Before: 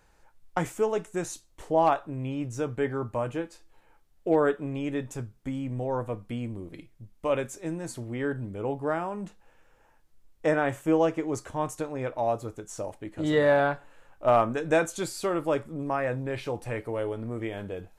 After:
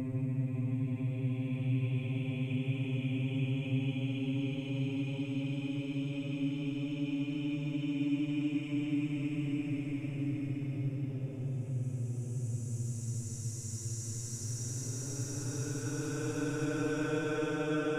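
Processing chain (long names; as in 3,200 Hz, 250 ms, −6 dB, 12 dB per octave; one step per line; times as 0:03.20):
extreme stretch with random phases 42×, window 0.10 s, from 0:02.20
dynamic equaliser 530 Hz, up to −8 dB, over −43 dBFS, Q 0.8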